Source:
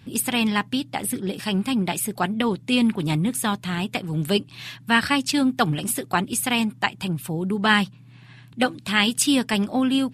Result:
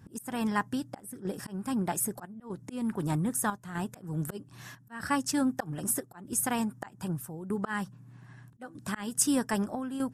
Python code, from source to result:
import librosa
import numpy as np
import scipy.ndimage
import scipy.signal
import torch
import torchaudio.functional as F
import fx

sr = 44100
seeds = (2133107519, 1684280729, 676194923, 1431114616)

y = fx.auto_swell(x, sr, attack_ms=260.0)
y = fx.dynamic_eq(y, sr, hz=220.0, q=0.7, threshold_db=-31.0, ratio=4.0, max_db=-4)
y = fx.chopper(y, sr, hz=0.8, depth_pct=60, duty_pct=80)
y = fx.band_shelf(y, sr, hz=3100.0, db=-14.5, octaves=1.3)
y = y * 10.0 ** (-3.5 / 20.0)